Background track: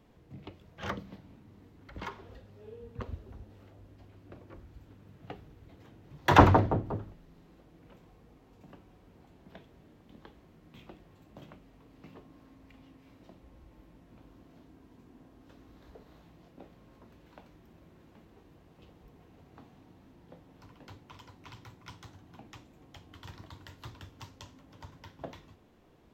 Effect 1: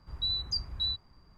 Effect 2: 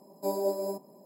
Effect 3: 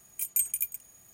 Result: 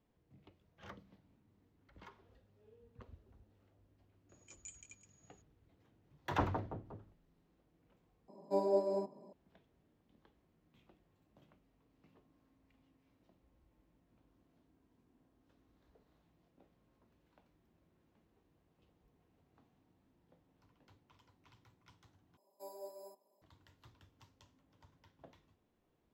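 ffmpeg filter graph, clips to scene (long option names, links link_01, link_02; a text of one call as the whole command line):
ffmpeg -i bed.wav -i cue0.wav -i cue1.wav -i cue2.wav -filter_complex "[2:a]asplit=2[link_01][link_02];[0:a]volume=-16.5dB[link_03];[3:a]aresample=16000,aresample=44100[link_04];[link_01]lowpass=3500[link_05];[link_02]highpass=510[link_06];[link_03]asplit=3[link_07][link_08][link_09];[link_07]atrim=end=8.284[link_10];[link_05]atrim=end=1.05,asetpts=PTS-STARTPTS,volume=-2.5dB[link_11];[link_08]atrim=start=9.326:end=22.374[link_12];[link_06]atrim=end=1.05,asetpts=PTS-STARTPTS,volume=-17dB[link_13];[link_09]atrim=start=23.416[link_14];[link_04]atrim=end=1.13,asetpts=PTS-STARTPTS,volume=-13.5dB,afade=type=in:duration=0.004:curve=hsin,afade=type=out:start_time=1.126:duration=0.004:curve=hsin,adelay=189189S[link_15];[link_10][link_11]acrossfade=duration=0.004:curve1=hsin:curve2=hsin[link_16];[link_16][link_12]acrossfade=duration=0.004:curve1=hsin:curve2=hsin[link_17];[link_17][link_13]acrossfade=duration=0.004:curve1=hsin:curve2=hsin[link_18];[link_18][link_14]acrossfade=duration=0.004:curve1=hsin:curve2=hsin[link_19];[link_19][link_15]amix=inputs=2:normalize=0" out.wav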